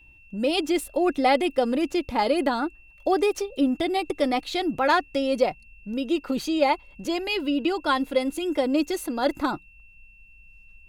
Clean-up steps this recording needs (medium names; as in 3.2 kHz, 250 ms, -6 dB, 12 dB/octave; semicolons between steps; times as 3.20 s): band-stop 2.7 kHz, Q 30